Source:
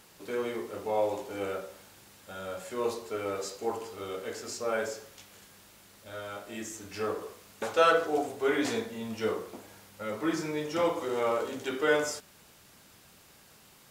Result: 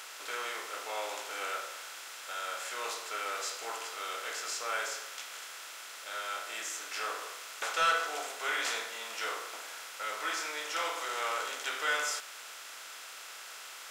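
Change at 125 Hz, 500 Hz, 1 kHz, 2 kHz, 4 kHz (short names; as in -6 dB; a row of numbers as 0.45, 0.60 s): under -25 dB, -12.5 dB, -1.0 dB, +2.5 dB, +5.0 dB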